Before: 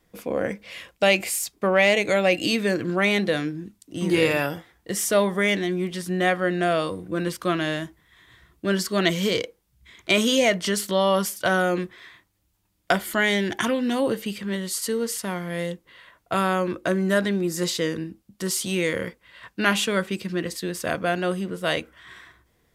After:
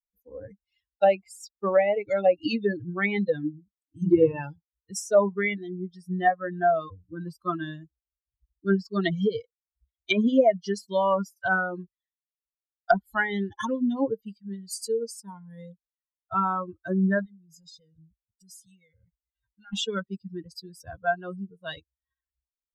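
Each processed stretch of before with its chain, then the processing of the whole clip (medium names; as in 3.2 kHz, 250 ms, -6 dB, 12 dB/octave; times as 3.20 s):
17.25–19.73 s: comb 1.4 ms, depth 51% + compression 3:1, threshold -34 dBFS
whole clip: expander on every frequency bin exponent 3; low-pass that closes with the level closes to 910 Hz, closed at -22.5 dBFS; peaking EQ 730 Hz +3.5 dB 0.3 oct; trim +5.5 dB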